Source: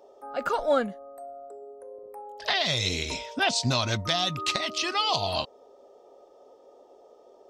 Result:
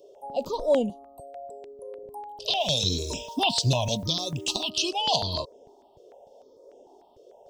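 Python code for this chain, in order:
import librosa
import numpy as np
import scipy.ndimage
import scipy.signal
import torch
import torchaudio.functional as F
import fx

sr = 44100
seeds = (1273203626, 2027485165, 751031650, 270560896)

y = scipy.signal.sosfilt(scipy.signal.ellip(3, 1.0, 40, [1000.0, 2800.0], 'bandstop', fs=sr, output='sos'), x)
y = fx.quant_dither(y, sr, seeds[0], bits=10, dither='none', at=(2.6, 4.7))
y = fx.phaser_held(y, sr, hz=6.7, low_hz=230.0, high_hz=4200.0)
y = y * 10.0 ** (5.0 / 20.0)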